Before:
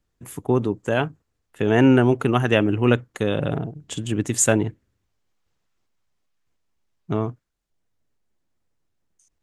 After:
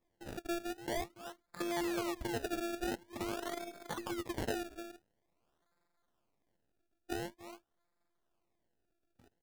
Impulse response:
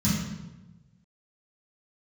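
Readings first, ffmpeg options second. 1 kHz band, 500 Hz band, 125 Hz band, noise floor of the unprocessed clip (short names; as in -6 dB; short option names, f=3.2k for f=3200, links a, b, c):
-13.0 dB, -18.0 dB, -27.0 dB, -75 dBFS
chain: -filter_complex "[0:a]acrossover=split=4400[a][b];[b]asoftclip=type=hard:threshold=-17dB[c];[a][c]amix=inputs=2:normalize=0,afftfilt=real='hypot(re,im)*cos(PI*b)':imag='0':win_size=512:overlap=0.75,aecho=1:1:283:0.0944,acrossover=split=130|3000[d][e][f];[d]acompressor=threshold=-34dB:ratio=10[g];[g][e][f]amix=inputs=3:normalize=0,asplit=2[h][i];[i]asoftclip=type=tanh:threshold=-24.5dB,volume=-12dB[j];[h][j]amix=inputs=2:normalize=0,bass=f=250:g=-10,treble=f=4k:g=-5,acompressor=threshold=-44dB:ratio=2.5,lowshelf=f=360:g=-7,acrusher=samples=29:mix=1:aa=0.000001:lfo=1:lforange=29:lforate=0.47,volume=4dB"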